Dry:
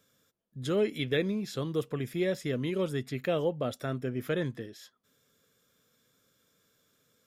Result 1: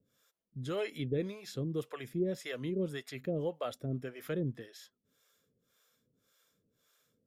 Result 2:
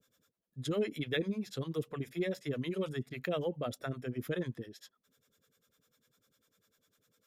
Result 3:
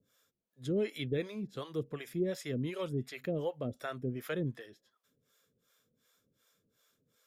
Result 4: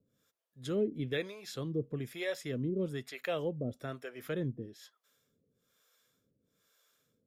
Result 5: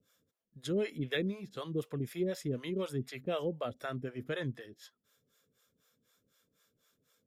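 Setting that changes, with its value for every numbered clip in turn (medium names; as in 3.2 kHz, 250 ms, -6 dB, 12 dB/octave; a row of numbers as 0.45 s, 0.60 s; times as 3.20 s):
harmonic tremolo, rate: 1.8 Hz, 10 Hz, 2.7 Hz, 1.1 Hz, 4 Hz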